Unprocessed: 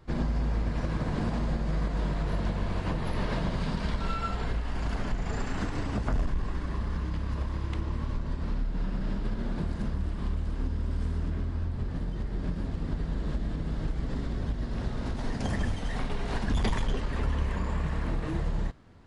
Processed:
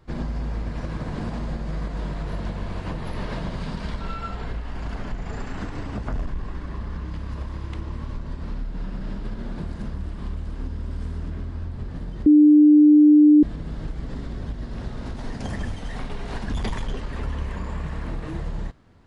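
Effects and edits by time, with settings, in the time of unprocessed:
4.00–7.09 s: treble shelf 5.7 kHz -6 dB
12.26–13.43 s: bleep 299 Hz -9 dBFS

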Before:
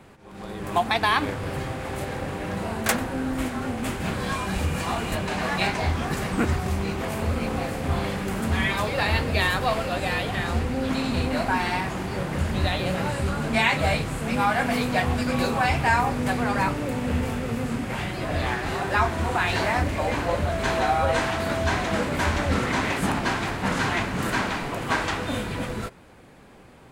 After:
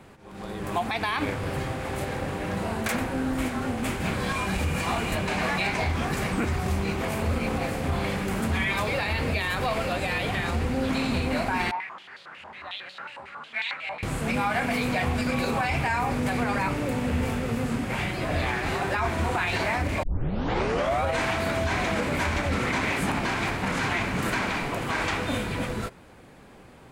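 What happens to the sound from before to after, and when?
11.71–14.03 s: step-sequenced band-pass 11 Hz 920–4000 Hz
20.03 s: tape start 1.01 s
whole clip: dynamic bell 2.3 kHz, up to +6 dB, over -44 dBFS, Q 5.1; peak limiter -17 dBFS

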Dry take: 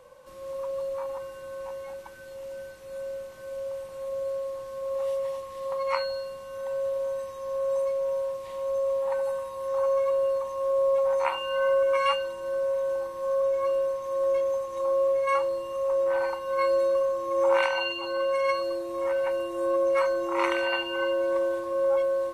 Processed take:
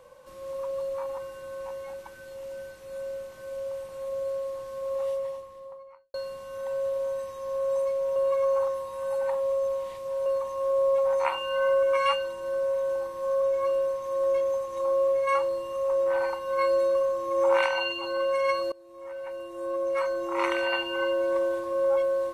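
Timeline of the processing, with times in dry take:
4.89–6.14 s: studio fade out
8.16–10.26 s: reverse
18.72–20.71 s: fade in, from -22.5 dB

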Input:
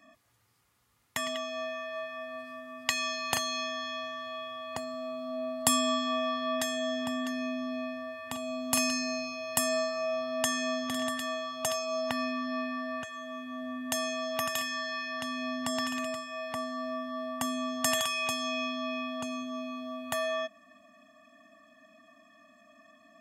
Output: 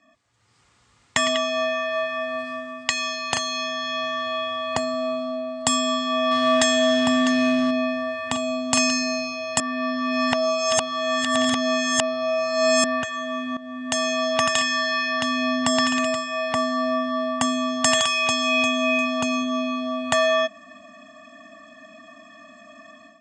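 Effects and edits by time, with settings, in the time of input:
6.31–7.71 s: companding laws mixed up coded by mu
9.60–12.84 s: reverse
13.57–14.21 s: fade in linear, from -15 dB
18.07–18.70 s: echo throw 350 ms, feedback 30%, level -9 dB
whole clip: elliptic low-pass 8.2 kHz, stop band 50 dB; level rider gain up to 14.5 dB; trim -1 dB

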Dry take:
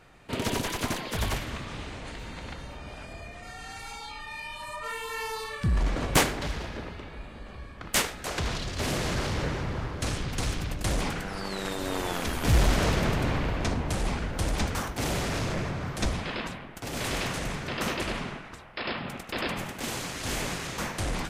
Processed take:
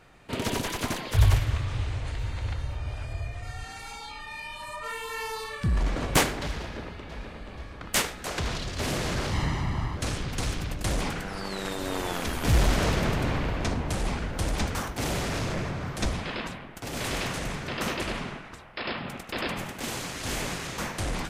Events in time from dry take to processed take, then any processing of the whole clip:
1.11–3.64 s: resonant low shelf 140 Hz +9 dB, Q 3
6.61–7.15 s: echo throw 480 ms, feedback 60%, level -6 dB
9.33–9.97 s: comb 1 ms

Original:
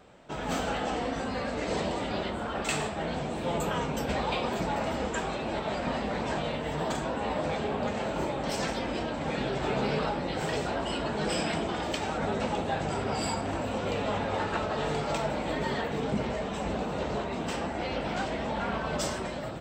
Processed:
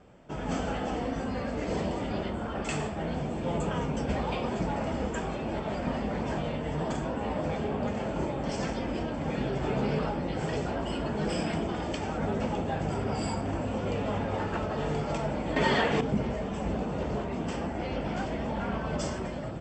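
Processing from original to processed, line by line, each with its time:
15.56–16.01 s: FFT filter 100 Hz 0 dB, 3.2 kHz +14 dB, 9.1 kHz +8 dB
whole clip: steep low-pass 8.1 kHz 96 dB/octave; bass shelf 410 Hz +8.5 dB; band-stop 3.9 kHz, Q 5.8; trim -4.5 dB

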